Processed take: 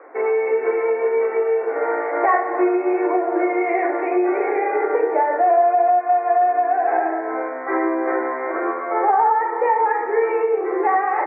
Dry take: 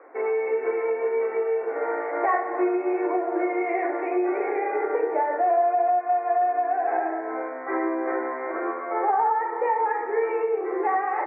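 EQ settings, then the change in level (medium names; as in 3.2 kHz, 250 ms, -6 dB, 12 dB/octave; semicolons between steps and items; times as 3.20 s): high-pass 210 Hz; distance through air 500 m; treble shelf 2.4 kHz +10.5 dB; +6.5 dB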